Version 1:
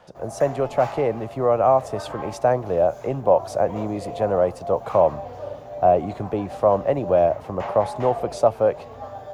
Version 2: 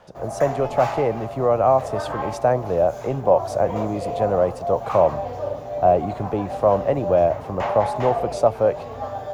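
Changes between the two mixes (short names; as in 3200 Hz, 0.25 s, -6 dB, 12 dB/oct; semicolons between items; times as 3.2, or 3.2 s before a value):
speech: add low shelf 140 Hz +4 dB; background +6.0 dB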